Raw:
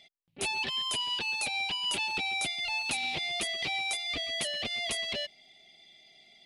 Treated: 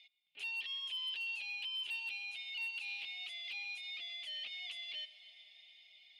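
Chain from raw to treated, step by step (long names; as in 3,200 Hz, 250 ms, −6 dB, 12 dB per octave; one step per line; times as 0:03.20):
brickwall limiter −26 dBFS, peak gain reduction 9 dB
downward compressor 8 to 1, threshold −38 dBFS, peak gain reduction 9 dB
resonant band-pass 2,700 Hz, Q 3.4
hard clipping −38 dBFS, distortion −30 dB
convolution reverb RT60 5.5 s, pre-delay 49 ms, DRR 13.5 dB
wrong playback speed 24 fps film run at 25 fps
level +2 dB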